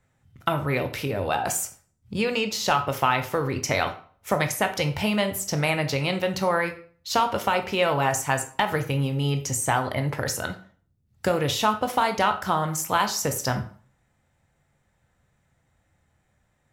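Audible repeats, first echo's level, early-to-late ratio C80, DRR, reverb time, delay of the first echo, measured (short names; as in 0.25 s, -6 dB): none, none, 16.5 dB, 6.5 dB, 0.45 s, none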